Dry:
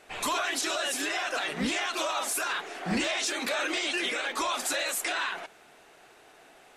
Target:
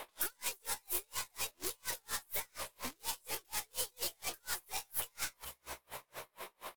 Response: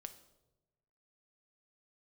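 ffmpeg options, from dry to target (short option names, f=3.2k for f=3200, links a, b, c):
-filter_complex "[0:a]equalizer=f=125:t=o:w=1:g=-7,equalizer=f=250:t=o:w=1:g=7,equalizer=f=500:t=o:w=1:g=4,equalizer=f=1k:t=o:w=1:g=3,equalizer=f=4k:t=o:w=1:g=-6,equalizer=f=8k:t=o:w=1:g=4,aeval=exprs='(tanh(89.1*val(0)+0.7)-tanh(0.7))/89.1':c=same,asetrate=62367,aresample=44100,atempo=0.707107,acrossover=split=1800|5100[a][b][c];[a]acompressor=threshold=-55dB:ratio=4[d];[b]acompressor=threshold=-60dB:ratio=4[e];[c]acompressor=threshold=-48dB:ratio=4[f];[d][e][f]amix=inputs=3:normalize=0,crystalizer=i=0.5:c=0,asplit=2[g][h];[h]asplit=6[i][j][k][l][m][n];[i]adelay=444,afreqshift=63,volume=-12dB[o];[j]adelay=888,afreqshift=126,volume=-17.5dB[p];[k]adelay=1332,afreqshift=189,volume=-23dB[q];[l]adelay=1776,afreqshift=252,volume=-28.5dB[r];[m]adelay=2220,afreqshift=315,volume=-34.1dB[s];[n]adelay=2664,afreqshift=378,volume=-39.6dB[t];[o][p][q][r][s][t]amix=inputs=6:normalize=0[u];[g][u]amix=inputs=2:normalize=0,aeval=exprs='val(0)*pow(10,-39*(0.5-0.5*cos(2*PI*4.2*n/s))/20)':c=same,volume=13dB"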